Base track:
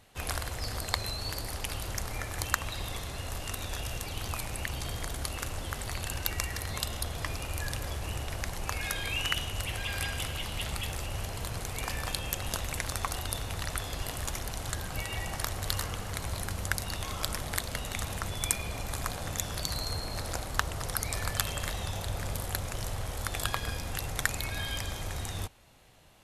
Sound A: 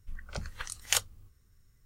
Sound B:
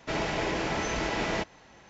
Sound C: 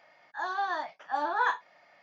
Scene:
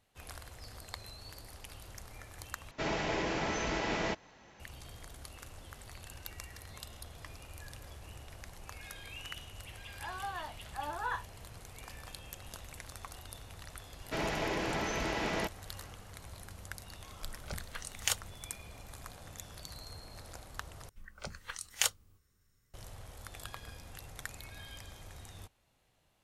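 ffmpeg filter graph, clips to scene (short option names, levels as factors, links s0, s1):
-filter_complex "[2:a]asplit=2[s0][s1];[1:a]asplit=2[s2][s3];[0:a]volume=0.2[s4];[s3]lowshelf=f=130:g=-10[s5];[s4]asplit=3[s6][s7][s8];[s6]atrim=end=2.714[s9];[s0]atrim=end=1.89,asetpts=PTS-STARTPTS,volume=0.631[s10];[s7]atrim=start=4.596:end=20.894[s11];[s5]atrim=end=1.85,asetpts=PTS-STARTPTS,volume=0.75[s12];[s8]atrim=start=22.736[s13];[3:a]atrim=end=2.02,asetpts=PTS-STARTPTS,volume=0.335,afade=t=in:d=0.004:c=hsin,afade=t=out:st=2.016:d=0.004:c=hsin,adelay=9650[s14];[s1]atrim=end=1.89,asetpts=PTS-STARTPTS,volume=0.596,afade=t=in:d=0.004:c=hsin,afade=t=out:st=1.886:d=0.004:c=hsin,adelay=14040[s15];[s2]atrim=end=1.85,asetpts=PTS-STARTPTS,volume=0.596,afade=t=in:d=0.004:c=hsin,afade=t=out:st=1.846:d=0.004:c=hsin,adelay=17150[s16];[s9][s10]acrossfade=d=0.004:c1=hsin:c2=hsin[s17];[s17][s11]acrossfade=d=0.004:c1=hsin:c2=hsin[s18];[s18][s12]acrossfade=d=0.004:c1=hsin:c2=hsin[s19];[s19][s13]acrossfade=d=0.004:c1=hsin:c2=hsin[s20];[s20][s14][s15][s16]amix=inputs=4:normalize=0"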